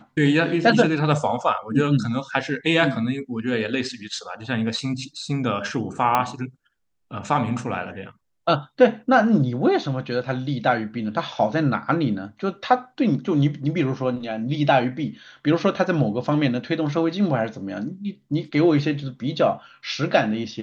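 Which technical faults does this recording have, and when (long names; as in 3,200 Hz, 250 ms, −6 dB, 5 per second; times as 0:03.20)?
0:06.15: click −6 dBFS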